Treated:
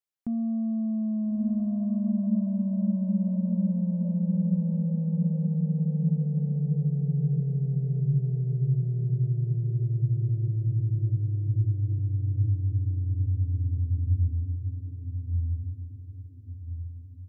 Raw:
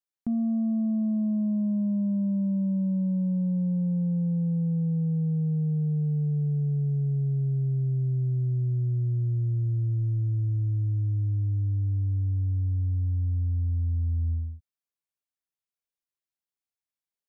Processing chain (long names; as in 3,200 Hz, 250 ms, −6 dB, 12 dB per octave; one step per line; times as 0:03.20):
feedback delay with all-pass diffusion 1,334 ms, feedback 41%, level −3 dB
level −2 dB